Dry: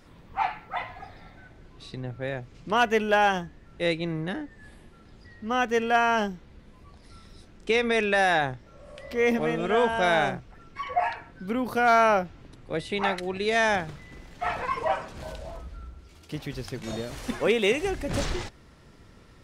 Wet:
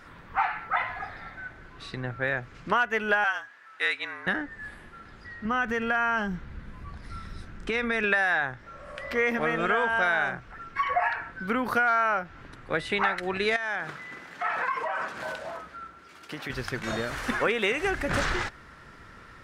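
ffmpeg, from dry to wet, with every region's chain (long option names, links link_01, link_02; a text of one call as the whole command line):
ffmpeg -i in.wav -filter_complex "[0:a]asettb=1/sr,asplit=3[link_01][link_02][link_03];[link_01]atrim=end=3.244[link_04];[link_02]atrim=start=3.24:end=4.27,asetpts=PTS-STARTPTS,afade=type=in:duration=0.004:curve=qsin,afade=type=out:start_time=1.026:duration=0.004:curve=qsin,highpass=960,afreqshift=-45[link_05];[link_03]atrim=start=4.266[link_06];[link_04][link_05]acrossfade=duration=0.004:curve1=hsin:curve2=qsin[link_07];[link_07][link_06]acrossfade=duration=0.004:curve1=qsin:curve2=hsin,asettb=1/sr,asplit=3[link_08][link_09][link_10];[link_08]atrim=end=5.454[link_11];[link_09]atrim=start=5.45:end=8.04,asetpts=PTS-STARTPTS,afade=type=in:duration=0.004:curve=qsin,afade=type=out:start_time=2.586:duration=0.004:curve=qsin,bass=frequency=250:gain=10,treble=frequency=4000:gain=0,acompressor=threshold=-27dB:ratio=6:attack=3.2:release=140:knee=1:detection=peak[link_12];[link_10]atrim=start=8.036[link_13];[link_11][link_12]acrossfade=duration=0.004:curve1=hsin:curve2=qsin[link_14];[link_14][link_13]acrossfade=duration=0.004:curve1=qsin:curve2=hsin,asettb=1/sr,asplit=3[link_15][link_16][link_17];[link_15]atrim=end=13.564[link_18];[link_16]atrim=start=13.56:end=16.5,asetpts=PTS-STARTPTS,afade=type=in:duration=0.004:curve=qsin,afade=type=out:start_time=2.936:duration=0.004:curve=qsin,highpass=200,acompressor=threshold=-33dB:ratio=6:attack=3.2:release=140:knee=1:detection=peak[link_19];[link_17]atrim=start=16.496[link_20];[link_18][link_19]acrossfade=duration=0.004:curve1=hsin:curve2=qsin[link_21];[link_21][link_20]acrossfade=duration=0.004:curve1=qsin:curve2=hsin,equalizer=frequency=1500:width=1.1:gain=14.5,acompressor=threshold=-22dB:ratio=6" out.wav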